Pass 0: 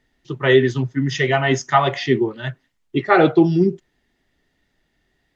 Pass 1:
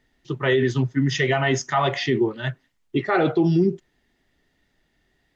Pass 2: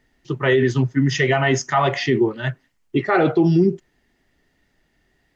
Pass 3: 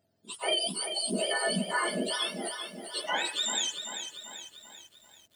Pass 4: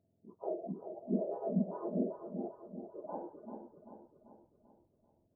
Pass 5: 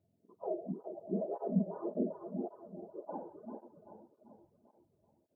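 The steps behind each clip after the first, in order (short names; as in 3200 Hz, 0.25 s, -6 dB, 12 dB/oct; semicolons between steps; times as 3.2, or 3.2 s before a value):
limiter -11 dBFS, peak gain reduction 9.5 dB
bell 3600 Hz -5 dB 0.31 oct; gain +3 dB
spectrum mirrored in octaves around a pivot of 1100 Hz; lo-fi delay 0.39 s, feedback 55%, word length 8-bit, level -8 dB; gain -9 dB
Gaussian blur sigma 14 samples; gain +1 dB
tape flanging out of phase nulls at 1.8 Hz, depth 4.5 ms; gain +2.5 dB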